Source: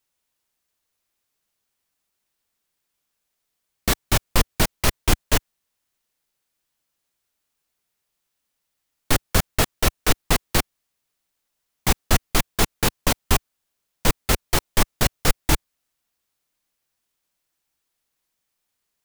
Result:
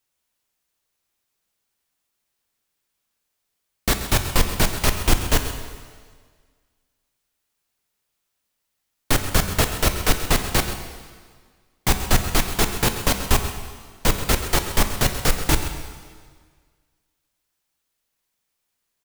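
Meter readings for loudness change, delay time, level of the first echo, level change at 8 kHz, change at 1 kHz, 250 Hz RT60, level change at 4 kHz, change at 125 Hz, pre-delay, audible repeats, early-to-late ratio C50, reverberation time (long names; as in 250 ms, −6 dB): +1.0 dB, 132 ms, −13.0 dB, +1.0 dB, +1.0 dB, 1.7 s, +1.0 dB, +1.5 dB, 5 ms, 1, 7.0 dB, 1.7 s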